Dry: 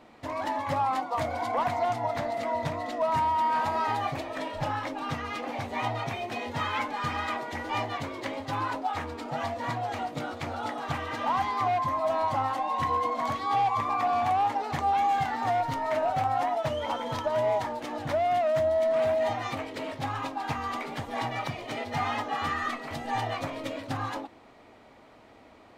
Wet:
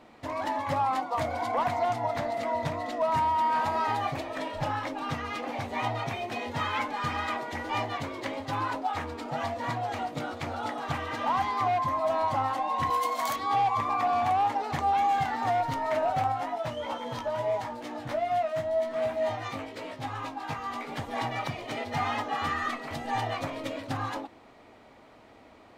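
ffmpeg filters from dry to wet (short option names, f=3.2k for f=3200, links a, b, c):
-filter_complex "[0:a]asettb=1/sr,asplit=3[a][b][c];[a]atrim=end=12.904[d];[b]atrim=start=12.9:end=13.36,asetpts=PTS-STARTPTS,afade=t=in:d=0.004:c=qsin,afade=t=out:st=0.456:d=0.004:c=qsin,aemphasis=mode=production:type=riaa[e];[c]atrim=start=13.356[f];[d][e]acrossfade=d=0.004:c1=hsin:c2=qsin[g];[g][f]acrossfade=d=0.004:c1=qsin:c2=hsin,asplit=3[h][i][j];[h]afade=t=out:st=16.31:d=0.02[k];[i]flanger=delay=16:depth=2.6:speed=1,afade=t=in:st=16.31:d=0.02,afade=t=out:st=20.88:d=0.02[l];[j]afade=t=in:st=20.88:d=0.02[m];[k][l][m]amix=inputs=3:normalize=0"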